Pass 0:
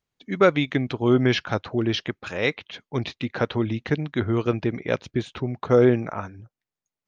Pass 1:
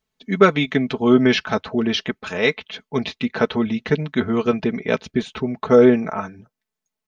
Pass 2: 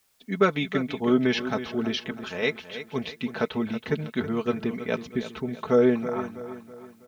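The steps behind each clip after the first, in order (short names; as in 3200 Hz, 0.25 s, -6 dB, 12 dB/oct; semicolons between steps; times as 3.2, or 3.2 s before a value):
comb 4.6 ms, depth 71%; gain +3 dB
feedback echo 0.324 s, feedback 44%, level -12 dB; requantised 10-bit, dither triangular; gain -7.5 dB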